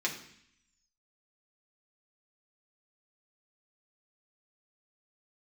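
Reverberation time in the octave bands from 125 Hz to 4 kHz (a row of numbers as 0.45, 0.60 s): 0.90, 0.85, 0.60, 0.70, 0.85, 0.85 s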